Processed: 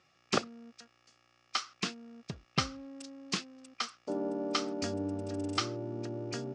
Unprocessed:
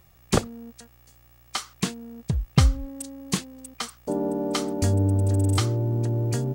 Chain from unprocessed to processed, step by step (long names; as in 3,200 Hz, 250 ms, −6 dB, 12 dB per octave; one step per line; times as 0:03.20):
loudspeaker in its box 260–6,200 Hz, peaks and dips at 470 Hz −4 dB, 910 Hz −5 dB, 1,300 Hz +6 dB, 2,600 Hz +5 dB, 5,200 Hz +6 dB
level −5.5 dB